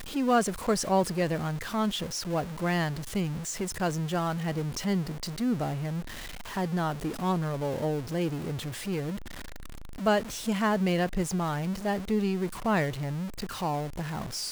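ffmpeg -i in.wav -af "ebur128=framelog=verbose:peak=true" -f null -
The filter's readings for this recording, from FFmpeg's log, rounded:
Integrated loudness:
  I:         -29.8 LUFS
  Threshold: -40.0 LUFS
Loudness range:
  LRA:         3.1 LU
  Threshold: -50.3 LUFS
  LRA low:   -31.6 LUFS
  LRA high:  -28.4 LUFS
True peak:
  Peak:      -13.5 dBFS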